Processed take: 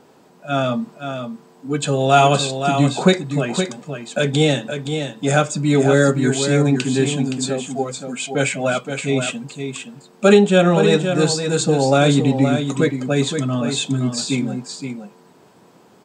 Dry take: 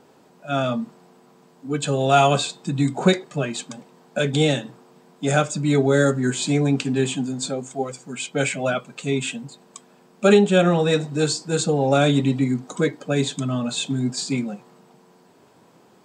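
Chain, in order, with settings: echo 0.519 s -7.5 dB; gain +3 dB

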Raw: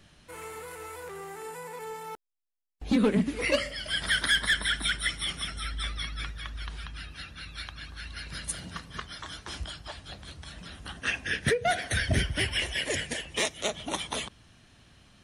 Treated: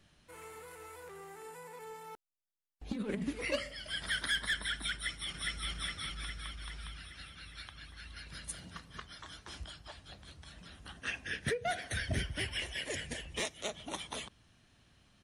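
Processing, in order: 2.92–3.33 negative-ratio compressor -26 dBFS, ratio -0.5; 4.93–5.69 echo throw 0.41 s, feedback 60%, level -0.5 dB; 13.04–13.44 low shelf 130 Hz +11.5 dB; gain -8.5 dB

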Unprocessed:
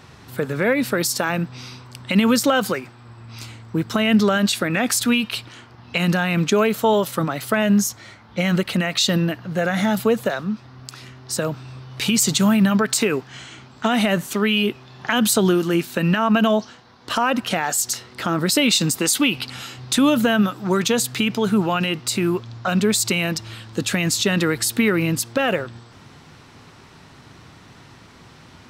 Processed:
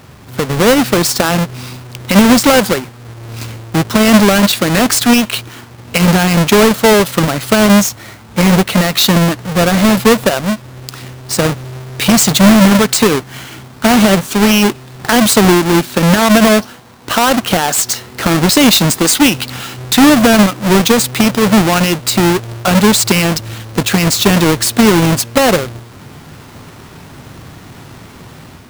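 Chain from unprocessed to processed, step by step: half-waves squared off; AGC gain up to 5 dB; gain +1.5 dB

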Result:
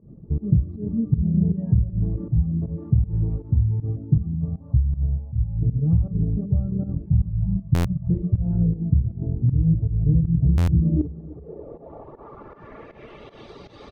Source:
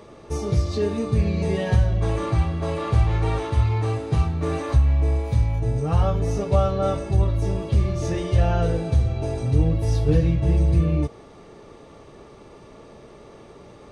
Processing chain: reverb removal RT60 0.92 s; 4.35–5.59 fixed phaser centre 840 Hz, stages 4; 7.06–8.1 elliptic band-stop 190–670 Hz; in parallel at -2.5 dB: limiter -18 dBFS, peak gain reduction 11 dB; on the sum: compressor 3:1, threshold -18 dBFS, peak gain reduction 6.5 dB; low-pass sweep 180 Hz -> 4100 Hz, 10.63–13.49; pump 158 bpm, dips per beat 1, -19 dB, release 0.129 s; de-hum 199.7 Hz, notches 3; on a send: feedback echo 0.314 s, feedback 40%, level -18 dB; on the sum: stuck buffer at 7.74/10.57, samples 512, times 8; Doppler distortion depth 0.19 ms

